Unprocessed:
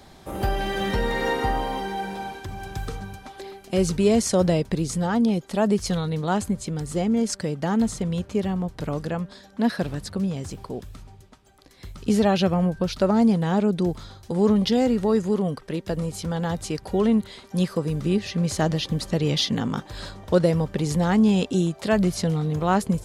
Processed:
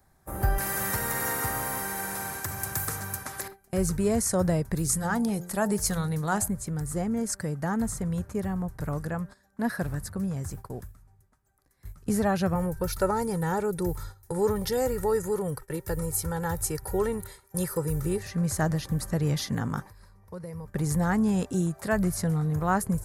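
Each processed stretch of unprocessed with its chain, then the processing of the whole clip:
0.58–3.48 HPF 83 Hz 24 dB/oct + spectral compressor 2:1
4.75–6.48 high shelf 2400 Hz +7.5 dB + de-hum 88.42 Hz, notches 10
12.55–18.23 high shelf 9400 Hz +12 dB + comb 2.2 ms, depth 66%
19.82–20.68 ripple EQ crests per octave 0.86, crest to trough 8 dB + compressor 2.5:1, threshold -39 dBFS
whole clip: gate -37 dBFS, range -13 dB; EQ curve 130 Hz 0 dB, 220 Hz -8 dB, 470 Hz -8 dB, 1700 Hz -1 dB, 3100 Hz -18 dB, 12000 Hz +7 dB; gain +1 dB

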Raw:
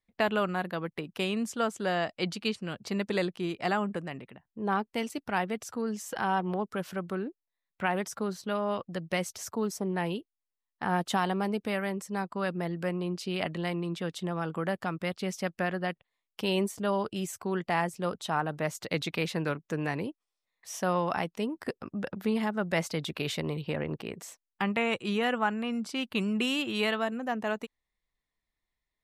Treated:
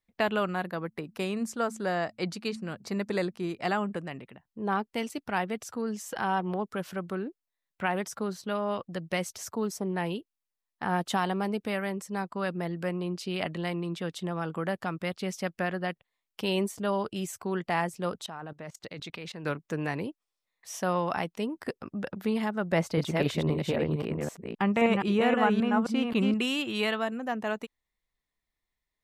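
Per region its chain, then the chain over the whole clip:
0.66–3.62 bell 3100 Hz -8 dB 0.54 oct + de-hum 110.4 Hz, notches 2
18.26–19.45 level quantiser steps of 20 dB + bell 12000 Hz -11 dB 0.62 oct
22.71–26.34 reverse delay 0.263 s, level -3 dB + tilt shelf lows +4.5 dB, about 1500 Hz
whole clip: dry

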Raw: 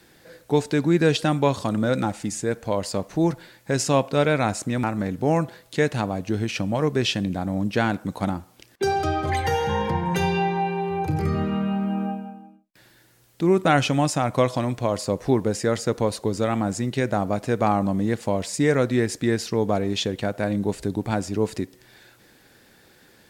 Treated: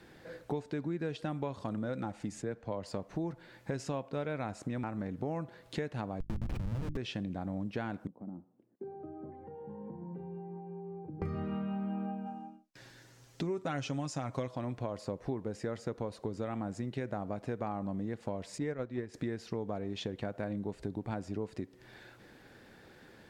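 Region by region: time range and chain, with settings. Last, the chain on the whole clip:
2.42–2.87 air absorption 56 m + three-band expander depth 70%
6.2–6.97 Schmitt trigger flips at -24.5 dBFS + tone controls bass +12 dB, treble +4 dB + notches 50/100/150/200/250/300/350 Hz
8.07–11.22 compressor, threshold -26 dBFS + ladder band-pass 270 Hz, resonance 30%
12.26–14.48 bell 6200 Hz +11 dB 1.1 oct + comb 7.4 ms, depth 46%
18.58–19.14 gate -20 dBFS, range -8 dB + high shelf 9400 Hz -11 dB
whole clip: LPF 2000 Hz 6 dB/oct; compressor 5:1, threshold -35 dBFS

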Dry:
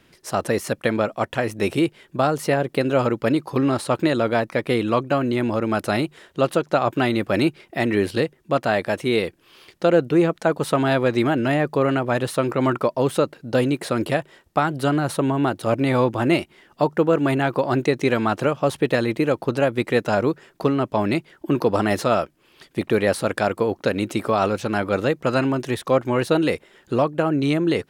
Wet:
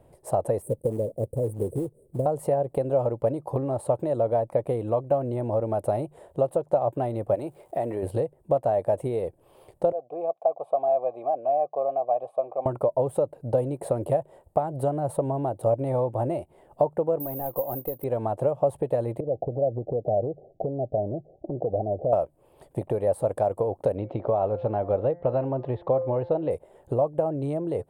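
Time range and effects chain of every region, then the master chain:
0.62–2.26 Chebyshev band-stop 490–8500 Hz, order 4 + short-mantissa float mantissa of 2-bit
7.34–8.02 HPF 260 Hz 6 dB/oct + compressor 2.5:1, threshold -25 dBFS + crackle 520/s -46 dBFS
9.92–12.66 vowel filter a + notch comb 1400 Hz
17.2–18.04 CVSD 32 kbps + comb 3.9 ms, depth 30% + careless resampling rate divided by 3×, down none, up zero stuff
19.2–22.13 Chebyshev low-pass 780 Hz, order 8 + compressor 3:1, threshold -28 dBFS
23.96–26.51 steep low-pass 4000 Hz + de-hum 173.6 Hz, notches 13
whole clip: compressor 6:1, threshold -25 dBFS; EQ curve 120 Hz 0 dB, 210 Hz -11 dB, 350 Hz -8 dB, 580 Hz +4 dB, 870 Hz -2 dB, 1400 Hz -21 dB, 5900 Hz -27 dB, 8700 Hz -8 dB, 12000 Hz -12 dB; gain +5.5 dB

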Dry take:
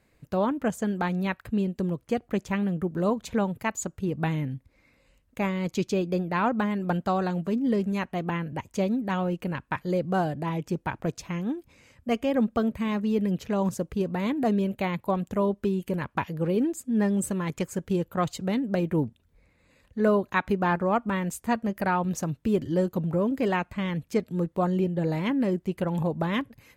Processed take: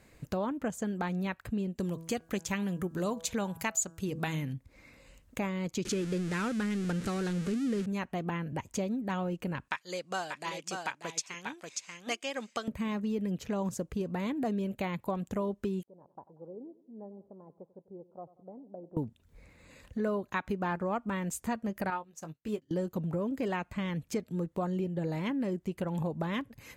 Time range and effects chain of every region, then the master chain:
1.8–4.53 high shelf 2300 Hz +12 dB + de-hum 164 Hz, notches 10
5.85–7.86 zero-crossing step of -28 dBFS + LPF 11000 Hz 24 dB/oct + band shelf 800 Hz -11 dB 1.1 oct
9.68–12.68 weighting filter ITU-R 468 + echo 0.587 s -6.5 dB + upward expander, over -45 dBFS
15.83–18.97 steep low-pass 780 Hz + differentiator + feedback echo 93 ms, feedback 52%, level -18.5 dB
21.9–22.71 low shelf 320 Hz -9.5 dB + doubler 19 ms -8 dB + upward expander 2.5:1, over -42 dBFS
whole clip: bell 7000 Hz +4 dB 0.61 oct; compressor 2.5:1, threshold -43 dBFS; gain +6 dB

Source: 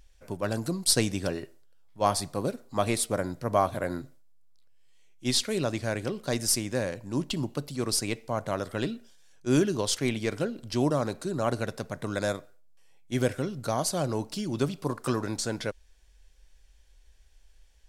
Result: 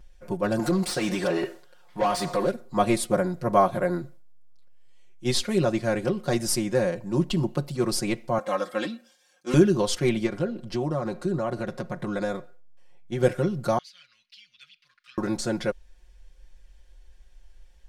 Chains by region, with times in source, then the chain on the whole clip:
0.59–2.51 compressor 2.5:1, threshold -35 dBFS + overdrive pedal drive 24 dB, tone 5400 Hz, clips at -20.5 dBFS
8.38–9.54 HPF 680 Hz 6 dB/oct + comb 3.8 ms, depth 91% + Doppler distortion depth 0.14 ms
10.26–13.23 high shelf 6700 Hz -7 dB + compressor 3:1, threshold -29 dBFS
13.78–15.18 inverse Chebyshev high-pass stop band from 910 Hz, stop band 50 dB + air absorption 290 m + core saturation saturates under 2800 Hz
whole clip: high shelf 2200 Hz -8.5 dB; comb 5.6 ms, depth 88%; gain +3.5 dB

